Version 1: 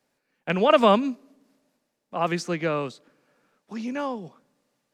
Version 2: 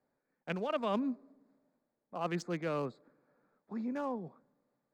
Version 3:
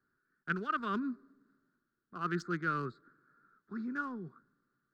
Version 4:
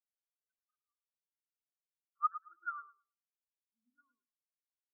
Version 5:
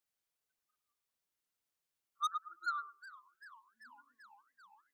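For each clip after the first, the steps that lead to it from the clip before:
Wiener smoothing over 15 samples; reverse; compressor 6:1, threshold -26 dBFS, peak gain reduction 13.5 dB; reverse; gain -5 dB
EQ curve 100 Hz 0 dB, 270 Hz -7 dB, 380 Hz -2 dB, 540 Hz -22 dB, 870 Hz -19 dB, 1400 Hz +11 dB, 2300 Hz -13 dB, 4300 Hz -4 dB, 7000 Hz -11 dB; gain +4.5 dB
band-pass sweep 5200 Hz -> 700 Hz, 0.75–3.05; feedback echo 0.109 s, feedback 59%, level -3.5 dB; spectral expander 4:1; gain +5 dB
soft clip -36 dBFS, distortion -5 dB; warbling echo 0.396 s, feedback 76%, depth 214 cents, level -18.5 dB; gain +6.5 dB

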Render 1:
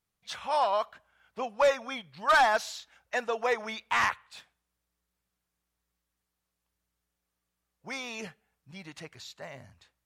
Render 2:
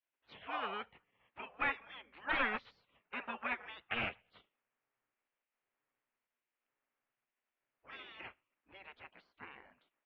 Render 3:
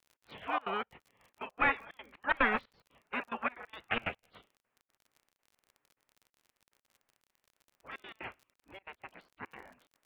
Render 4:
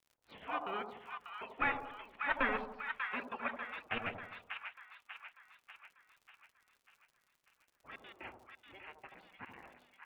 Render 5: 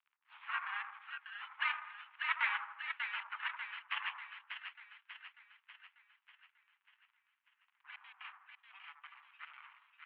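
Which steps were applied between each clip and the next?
steep low-pass 2700 Hz 36 dB/oct; spectral gate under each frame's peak -15 dB weak; gain +1 dB
step gate ".x.xxxx.xx.x.xxx" 181 bpm -24 dB; high shelf 2900 Hz -8.5 dB; crackle 37/s -57 dBFS; gain +8.5 dB
flange 0.63 Hz, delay 0.3 ms, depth 7.9 ms, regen -55%; split-band echo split 980 Hz, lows 81 ms, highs 0.592 s, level -5 dB; gain -1 dB
spectral gate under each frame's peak -20 dB strong; half-wave rectifier; mistuned SSB +390 Hz 540–2600 Hz; gain +5 dB

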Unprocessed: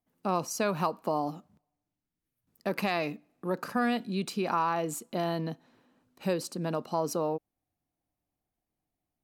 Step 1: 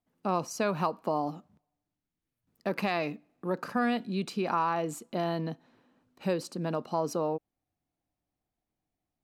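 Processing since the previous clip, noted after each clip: high shelf 7500 Hz -9.5 dB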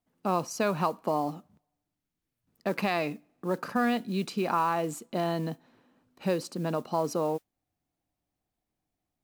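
modulation noise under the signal 27 dB; gain +1.5 dB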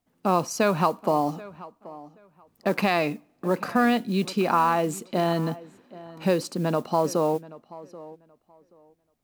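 tape echo 0.78 s, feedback 21%, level -17.5 dB, low-pass 2500 Hz; gain +5.5 dB

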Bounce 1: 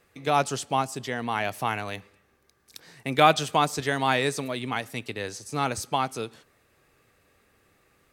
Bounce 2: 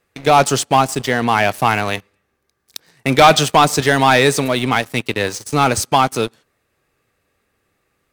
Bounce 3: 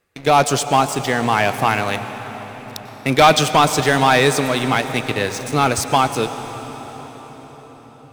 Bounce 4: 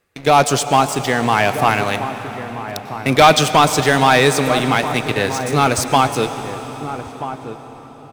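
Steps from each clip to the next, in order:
sample leveller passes 3; gain +2.5 dB
reverb RT60 6.0 s, pre-delay 89 ms, DRR 9.5 dB; gain -2 dB
outdoor echo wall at 220 m, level -11 dB; gain +1.5 dB

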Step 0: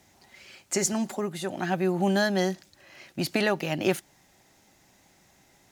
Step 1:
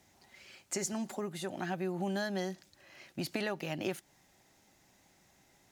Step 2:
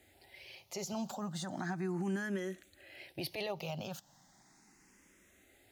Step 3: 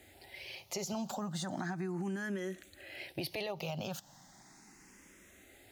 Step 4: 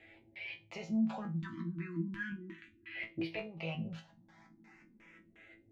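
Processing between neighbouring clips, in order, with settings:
compressor 2.5:1, threshold -28 dBFS, peak gain reduction 7 dB; gain -5.5 dB
limiter -30 dBFS, peak gain reduction 10 dB; endless phaser +0.36 Hz; gain +4 dB
compressor 5:1, threshold -41 dBFS, peak gain reduction 9 dB; gain +6 dB
LFO low-pass square 2.8 Hz 260–2400 Hz; resonator bank A2 fifth, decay 0.24 s; spectral delete 1.41–2.96, 370–930 Hz; gain +8.5 dB

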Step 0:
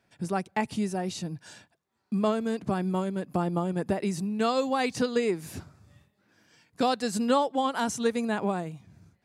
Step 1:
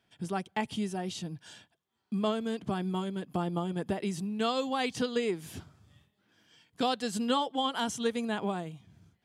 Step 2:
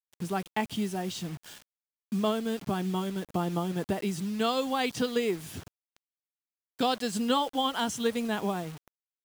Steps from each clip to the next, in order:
bell 3200 Hz +12.5 dB 0.23 oct; notch 560 Hz, Q 12; gain -4 dB
requantised 8-bit, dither none; gain +2 dB

